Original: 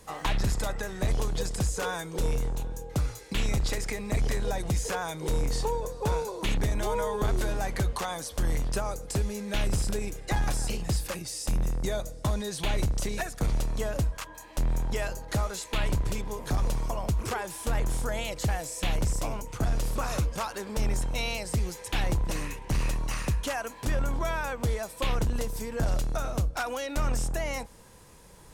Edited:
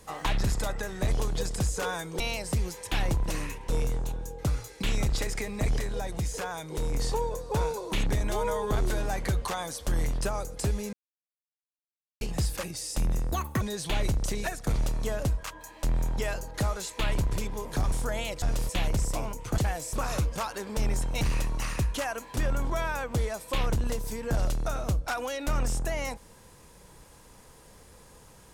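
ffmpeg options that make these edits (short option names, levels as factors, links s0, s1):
-filter_complex "[0:a]asplit=15[s0][s1][s2][s3][s4][s5][s6][s7][s8][s9][s10][s11][s12][s13][s14];[s0]atrim=end=2.202[s15];[s1]atrim=start=21.208:end=22.702[s16];[s2]atrim=start=2.198:end=4.302[s17];[s3]atrim=start=4.298:end=5.452,asetpts=PTS-STARTPTS,volume=0.708[s18];[s4]atrim=start=5.448:end=9.44,asetpts=PTS-STARTPTS,afade=t=out:st=3.988:d=0.004:c=hsin[s19];[s5]atrim=start=9.44:end=10.72,asetpts=PTS-STARTPTS,volume=0[s20];[s6]atrim=start=10.72:end=11.834,asetpts=PTS-STARTPTS,afade=t=in:d=0.004:c=hsin[s21];[s7]atrim=start=11.83:end=12.35,asetpts=PTS-STARTPTS,asetrate=78939,aresample=44100,atrim=end_sample=12811,asetpts=PTS-STARTPTS[s22];[s8]atrim=start=12.346:end=16.662[s23];[s9]atrim=start=17.918:end=18.422[s24];[s10]atrim=start=19.658:end=19.932[s25];[s11]atrim=start=18.768:end=19.662[s26];[s12]atrim=start=18.418:end=18.772[s27];[s13]atrim=start=19.928:end=21.212[s28];[s14]atrim=start=22.698[s29];[s15][s16]acrossfade=d=0.004:c1=hsin:c2=hsin[s30];[s30][s17]acrossfade=d=0.004:c1=hsin:c2=hsin[s31];[s31][s18]acrossfade=d=0.004:c1=hsin:c2=hsin[s32];[s19][s20][s21]concat=n=3:v=0:a=1[s33];[s32][s33]acrossfade=d=0.004:c1=hsin:c2=hsin[s34];[s34][s22]acrossfade=d=0.004:c1=hsin:c2=hsin[s35];[s35][s23]acrossfade=d=0.004:c1=hsin:c2=hsin[s36];[s36][s24]acrossfade=d=0.004:c1=hsin:c2=hsin[s37];[s37][s25]acrossfade=d=0.004:c1=hsin:c2=hsin[s38];[s38][s26]acrossfade=d=0.004:c1=hsin:c2=hsin[s39];[s39][s27]acrossfade=d=0.004:c1=hsin:c2=hsin[s40];[s40][s28]acrossfade=d=0.004:c1=hsin:c2=hsin[s41];[s41][s29]acrossfade=d=0.004:c1=hsin:c2=hsin"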